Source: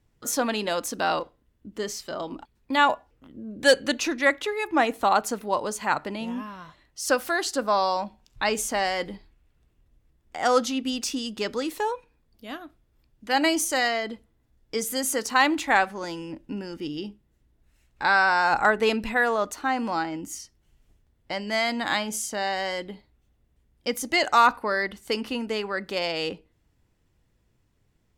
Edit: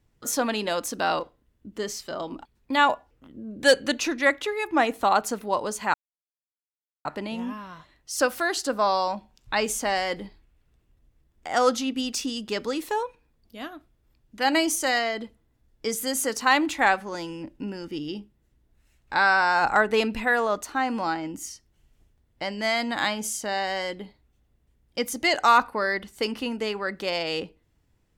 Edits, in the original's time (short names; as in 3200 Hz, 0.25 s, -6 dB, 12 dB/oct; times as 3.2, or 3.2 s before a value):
5.94 insert silence 1.11 s